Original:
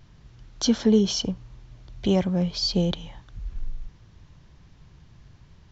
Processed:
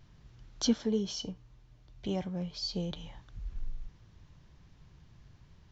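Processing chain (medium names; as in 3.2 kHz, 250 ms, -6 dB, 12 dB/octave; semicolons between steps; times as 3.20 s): 0.73–2.96 s: feedback comb 150 Hz, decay 0.22 s, harmonics all, mix 60%; trim -6 dB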